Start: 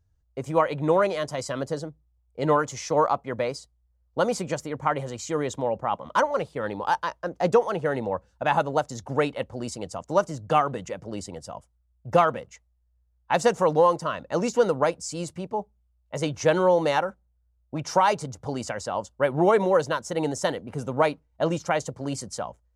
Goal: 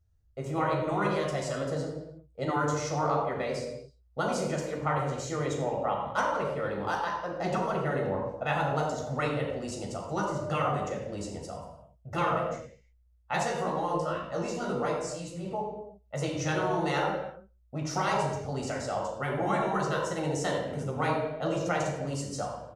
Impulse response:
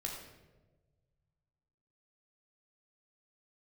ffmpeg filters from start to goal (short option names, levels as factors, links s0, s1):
-filter_complex "[0:a]asplit=2[s0][s1];[s1]adelay=134.1,volume=0.0316,highshelf=f=4000:g=-3.02[s2];[s0][s2]amix=inputs=2:normalize=0[s3];[1:a]atrim=start_sample=2205,afade=t=out:st=0.42:d=0.01,atrim=end_sample=18963[s4];[s3][s4]afir=irnorm=-1:irlink=0,asplit=3[s5][s6][s7];[s5]afade=t=out:st=13.43:d=0.02[s8];[s6]flanger=delay=16:depth=2.5:speed=2.1,afade=t=in:st=13.43:d=0.02,afade=t=out:st=15.44:d=0.02[s9];[s7]afade=t=in:st=15.44:d=0.02[s10];[s8][s9][s10]amix=inputs=3:normalize=0,afftfilt=real='re*lt(hypot(re,im),0.501)':imag='im*lt(hypot(re,im),0.501)':win_size=1024:overlap=0.75,volume=0.75"